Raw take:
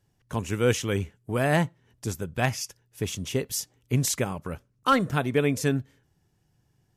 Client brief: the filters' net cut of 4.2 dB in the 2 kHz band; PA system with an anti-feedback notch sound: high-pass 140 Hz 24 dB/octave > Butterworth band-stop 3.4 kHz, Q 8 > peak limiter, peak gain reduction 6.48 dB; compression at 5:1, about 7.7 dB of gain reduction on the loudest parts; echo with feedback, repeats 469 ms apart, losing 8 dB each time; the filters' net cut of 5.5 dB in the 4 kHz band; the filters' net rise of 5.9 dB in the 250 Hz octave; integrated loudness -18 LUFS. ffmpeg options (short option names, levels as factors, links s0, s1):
-af "equalizer=f=250:t=o:g=7.5,equalizer=f=2000:t=o:g=-4.5,equalizer=f=4000:t=o:g=-5,acompressor=threshold=0.0708:ratio=5,highpass=f=140:w=0.5412,highpass=f=140:w=1.3066,asuperstop=centerf=3400:order=8:qfactor=8,aecho=1:1:469|938|1407|1876|2345:0.398|0.159|0.0637|0.0255|0.0102,volume=5.31,alimiter=limit=0.501:level=0:latency=1"